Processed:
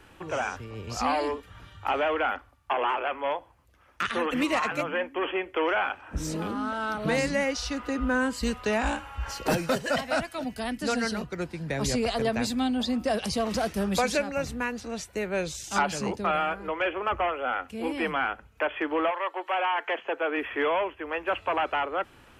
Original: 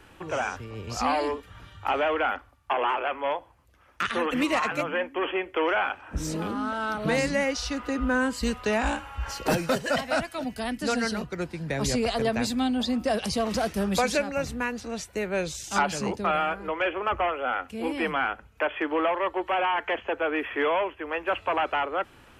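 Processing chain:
0:19.10–0:20.36: high-pass filter 740 Hz → 220 Hz 12 dB per octave
level −1 dB

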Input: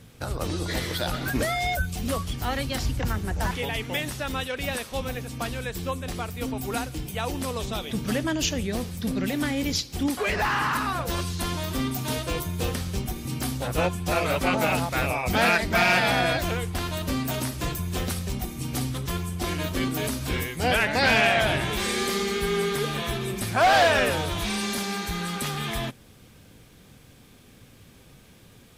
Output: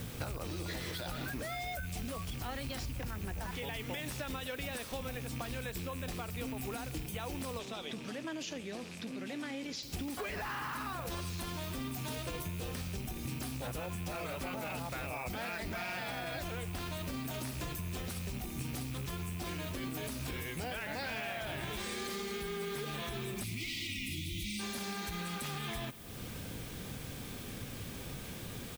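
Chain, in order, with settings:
loose part that buzzes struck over −33 dBFS, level −31 dBFS
0:23.43–0:24.60: time-frequency box erased 360–1,900 Hz
brickwall limiter −21.5 dBFS, peak gain reduction 10 dB
downward compressor 10 to 1, threshold −45 dBFS, peak gain reduction 19 dB
background noise violet −63 dBFS
0:07.59–0:09.83: band-pass filter 220–7,300 Hz
repeating echo 247 ms, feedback 59%, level −20 dB
level +8 dB

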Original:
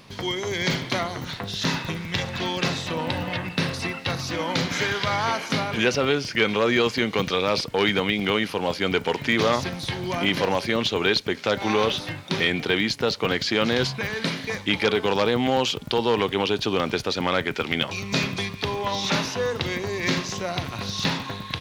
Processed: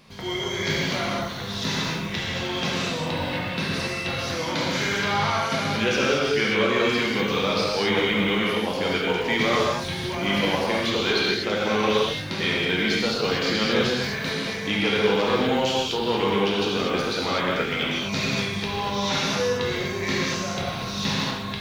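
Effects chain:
reverb whose tail is shaped and stops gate 270 ms flat, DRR −5.5 dB
level −6 dB

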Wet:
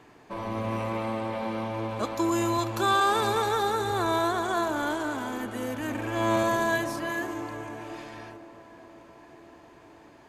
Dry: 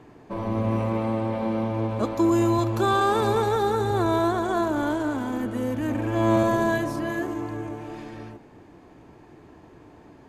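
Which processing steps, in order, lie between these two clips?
tilt shelving filter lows −6 dB, about 730 Hz
tape delay 517 ms, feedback 77%, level −16 dB, low-pass 1,800 Hz
level −2.5 dB

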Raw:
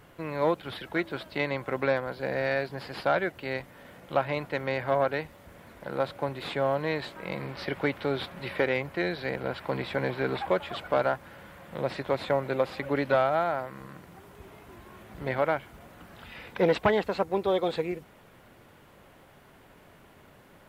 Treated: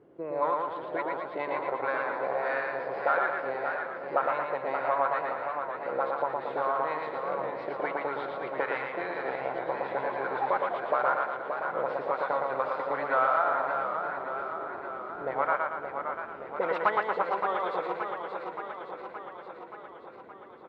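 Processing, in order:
envelope filter 360–1,200 Hz, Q 3.1, up, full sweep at −23 dBFS
repeating echo 115 ms, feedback 50%, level −3 dB
feedback echo with a swinging delay time 573 ms, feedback 65%, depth 104 cents, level −7 dB
level +6 dB

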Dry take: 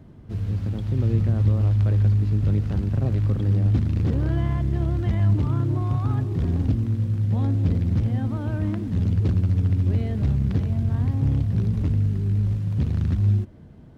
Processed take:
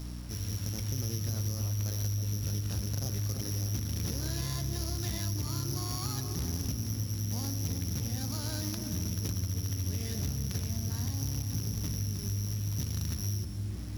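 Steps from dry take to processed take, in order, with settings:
samples sorted by size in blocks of 8 samples
tilt shelving filter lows −5.5 dB, about 1,100 Hz
hum removal 97.38 Hz, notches 27
mains hum 60 Hz, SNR 14 dB
high-shelf EQ 2,500 Hz +7 dB
delay with a low-pass on its return 320 ms, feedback 36%, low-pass 930 Hz, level −7.5 dB
convolution reverb RT60 0.95 s, pre-delay 109 ms, DRR 16 dB
reversed playback
upward compression, threshold −28 dBFS
reversed playback
bit reduction 8 bits
downward compressor, threshold −25 dBFS, peak gain reduction 7.5 dB
highs frequency-modulated by the lows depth 0.13 ms
level −4 dB

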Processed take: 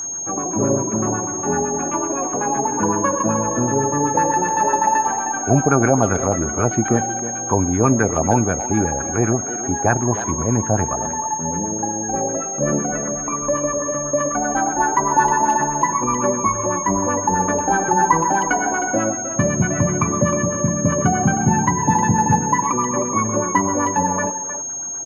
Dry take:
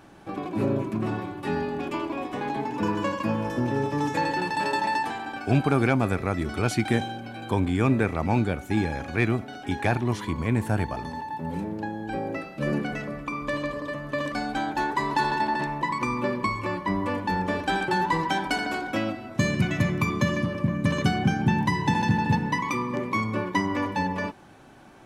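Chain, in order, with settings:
auto-filter low-pass sine 7.9 Hz 600–1,500 Hz
steady tone 6,500 Hz −29 dBFS
far-end echo of a speakerphone 310 ms, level −10 dB
level +4.5 dB

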